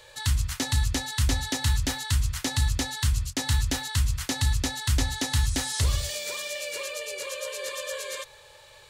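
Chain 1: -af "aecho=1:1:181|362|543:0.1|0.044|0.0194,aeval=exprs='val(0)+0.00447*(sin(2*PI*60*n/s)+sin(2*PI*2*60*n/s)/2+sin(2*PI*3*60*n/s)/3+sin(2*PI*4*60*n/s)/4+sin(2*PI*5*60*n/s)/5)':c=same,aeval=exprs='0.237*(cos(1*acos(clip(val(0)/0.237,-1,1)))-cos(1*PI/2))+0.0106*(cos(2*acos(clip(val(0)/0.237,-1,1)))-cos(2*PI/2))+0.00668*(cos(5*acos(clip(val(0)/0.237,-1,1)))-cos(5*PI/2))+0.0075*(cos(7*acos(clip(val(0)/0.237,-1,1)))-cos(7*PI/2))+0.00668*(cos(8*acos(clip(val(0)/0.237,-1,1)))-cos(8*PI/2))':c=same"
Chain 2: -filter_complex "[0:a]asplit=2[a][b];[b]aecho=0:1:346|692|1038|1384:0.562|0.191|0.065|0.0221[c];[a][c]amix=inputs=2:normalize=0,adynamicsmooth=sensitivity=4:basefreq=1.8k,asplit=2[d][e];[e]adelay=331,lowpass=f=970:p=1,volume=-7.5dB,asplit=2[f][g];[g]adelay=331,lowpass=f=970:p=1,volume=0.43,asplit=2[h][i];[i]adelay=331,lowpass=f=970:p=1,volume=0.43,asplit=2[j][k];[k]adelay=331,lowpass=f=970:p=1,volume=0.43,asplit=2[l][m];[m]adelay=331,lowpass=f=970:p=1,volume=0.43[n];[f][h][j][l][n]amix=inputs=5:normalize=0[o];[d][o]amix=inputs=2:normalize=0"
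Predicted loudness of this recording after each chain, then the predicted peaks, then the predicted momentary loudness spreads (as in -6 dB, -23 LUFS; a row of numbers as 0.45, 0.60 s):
-27.5, -26.5 LUFS; -12.5, -10.5 dBFS; 8, 9 LU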